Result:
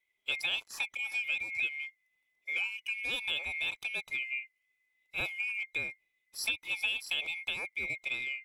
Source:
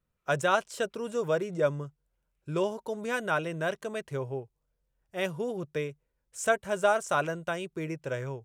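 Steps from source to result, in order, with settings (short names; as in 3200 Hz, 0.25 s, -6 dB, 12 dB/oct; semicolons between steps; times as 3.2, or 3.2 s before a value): band-swap scrambler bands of 2000 Hz; compressor 3:1, threshold -32 dBFS, peak gain reduction 10 dB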